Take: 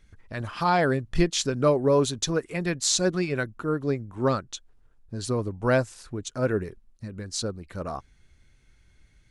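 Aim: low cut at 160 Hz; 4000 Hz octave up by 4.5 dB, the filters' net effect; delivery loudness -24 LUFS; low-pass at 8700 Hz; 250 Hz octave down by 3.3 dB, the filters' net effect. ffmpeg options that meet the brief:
-af "highpass=160,lowpass=8.7k,equalizer=f=250:t=o:g=-3.5,equalizer=f=4k:t=o:g=5.5,volume=2.5dB"

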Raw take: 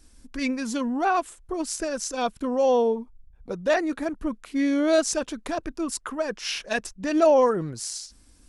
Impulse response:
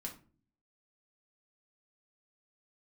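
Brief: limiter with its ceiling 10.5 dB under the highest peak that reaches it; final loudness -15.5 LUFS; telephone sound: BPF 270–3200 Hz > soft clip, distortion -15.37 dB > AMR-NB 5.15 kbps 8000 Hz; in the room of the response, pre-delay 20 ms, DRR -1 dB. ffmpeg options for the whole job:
-filter_complex "[0:a]alimiter=limit=-17.5dB:level=0:latency=1,asplit=2[a][b];[1:a]atrim=start_sample=2205,adelay=20[c];[b][c]afir=irnorm=-1:irlink=0,volume=3dB[d];[a][d]amix=inputs=2:normalize=0,highpass=270,lowpass=3.2k,asoftclip=threshold=-16.5dB,volume=12.5dB" -ar 8000 -c:a libopencore_amrnb -b:a 5150

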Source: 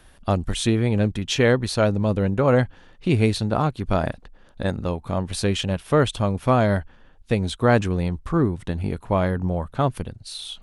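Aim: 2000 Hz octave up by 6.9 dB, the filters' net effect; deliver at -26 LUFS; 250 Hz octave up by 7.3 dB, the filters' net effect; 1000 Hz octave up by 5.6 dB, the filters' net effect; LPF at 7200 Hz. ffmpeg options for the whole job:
-af "lowpass=7.2k,equalizer=f=250:t=o:g=9,equalizer=f=1k:t=o:g=5,equalizer=f=2k:t=o:g=7,volume=-8dB"

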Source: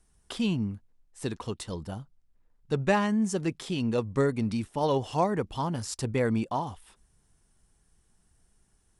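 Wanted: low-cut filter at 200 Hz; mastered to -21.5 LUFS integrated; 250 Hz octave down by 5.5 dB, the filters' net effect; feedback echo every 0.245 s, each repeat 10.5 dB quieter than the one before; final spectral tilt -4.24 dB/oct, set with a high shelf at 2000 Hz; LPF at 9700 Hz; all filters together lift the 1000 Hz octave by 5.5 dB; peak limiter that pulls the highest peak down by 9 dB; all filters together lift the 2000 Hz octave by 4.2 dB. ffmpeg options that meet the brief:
-af "highpass=200,lowpass=9.7k,equalizer=f=250:t=o:g=-4.5,equalizer=f=1k:t=o:g=7,highshelf=f=2k:g=-7,equalizer=f=2k:t=o:g=7,alimiter=limit=-17dB:level=0:latency=1,aecho=1:1:245|490|735:0.299|0.0896|0.0269,volume=10dB"

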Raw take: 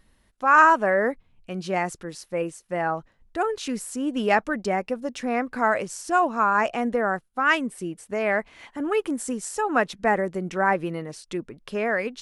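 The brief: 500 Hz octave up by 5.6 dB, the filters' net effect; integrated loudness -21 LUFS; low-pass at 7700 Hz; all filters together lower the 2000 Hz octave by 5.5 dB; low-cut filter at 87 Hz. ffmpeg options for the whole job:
-af "highpass=87,lowpass=7.7k,equalizer=f=500:t=o:g=7.5,equalizer=f=2k:t=o:g=-8.5,volume=2dB"

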